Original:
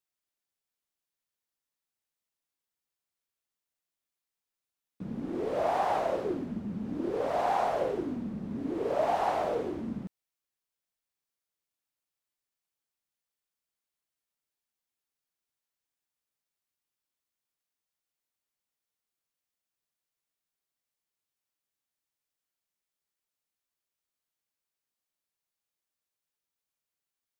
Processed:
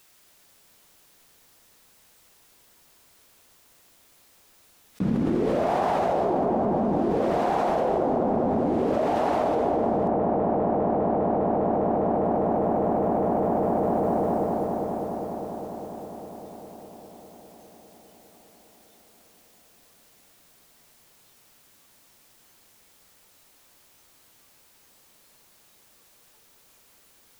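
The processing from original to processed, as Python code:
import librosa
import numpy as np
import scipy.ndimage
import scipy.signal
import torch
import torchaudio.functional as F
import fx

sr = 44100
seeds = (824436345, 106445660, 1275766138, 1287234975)

y = fx.noise_reduce_blind(x, sr, reduce_db=9)
y = fx.echo_wet_lowpass(y, sr, ms=202, feedback_pct=83, hz=910.0, wet_db=-3)
y = fx.env_flatten(y, sr, amount_pct=100)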